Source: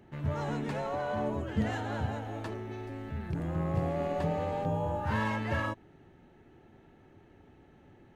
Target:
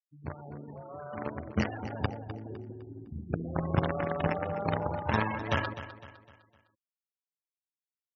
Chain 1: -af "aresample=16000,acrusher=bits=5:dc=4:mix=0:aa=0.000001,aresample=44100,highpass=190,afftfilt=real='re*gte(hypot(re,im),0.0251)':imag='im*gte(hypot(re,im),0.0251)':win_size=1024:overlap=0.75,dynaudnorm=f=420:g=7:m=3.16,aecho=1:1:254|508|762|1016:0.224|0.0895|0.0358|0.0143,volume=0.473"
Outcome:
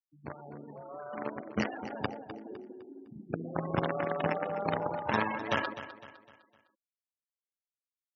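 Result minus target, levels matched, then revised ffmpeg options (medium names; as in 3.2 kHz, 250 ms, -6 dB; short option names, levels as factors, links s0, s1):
125 Hz band -6.5 dB
-af "aresample=16000,acrusher=bits=5:dc=4:mix=0:aa=0.000001,aresample=44100,highpass=58,afftfilt=real='re*gte(hypot(re,im),0.0251)':imag='im*gte(hypot(re,im),0.0251)':win_size=1024:overlap=0.75,dynaudnorm=f=420:g=7:m=3.16,aecho=1:1:254|508|762|1016:0.224|0.0895|0.0358|0.0143,volume=0.473"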